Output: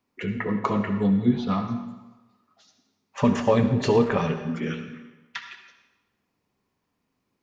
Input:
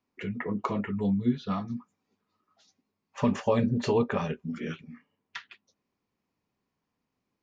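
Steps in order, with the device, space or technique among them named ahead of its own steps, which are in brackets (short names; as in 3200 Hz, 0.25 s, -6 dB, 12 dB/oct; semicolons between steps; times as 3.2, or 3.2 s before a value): saturated reverb return (on a send at -6 dB: reverb RT60 1.1 s, pre-delay 60 ms + soft clip -24.5 dBFS, distortion -13 dB); on the sum: gain +5 dB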